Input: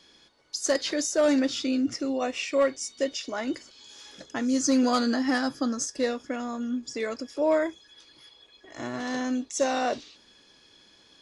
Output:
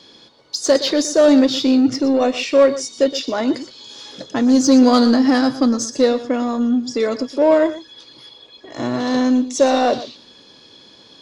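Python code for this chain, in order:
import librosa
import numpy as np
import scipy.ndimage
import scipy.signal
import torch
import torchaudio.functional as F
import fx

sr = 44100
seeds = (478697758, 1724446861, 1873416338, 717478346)

p1 = fx.graphic_eq(x, sr, hz=(125, 250, 500, 1000, 4000), db=(10, 8, 9, 7, 11))
p2 = 10.0 ** (-18.5 / 20.0) * np.tanh(p1 / 10.0 ** (-18.5 / 20.0))
p3 = p1 + (p2 * librosa.db_to_amplitude(-4.5))
p4 = p3 + 10.0 ** (-14.5 / 20.0) * np.pad(p3, (int(119 * sr / 1000.0), 0))[:len(p3)]
y = p4 * librosa.db_to_amplitude(-2.0)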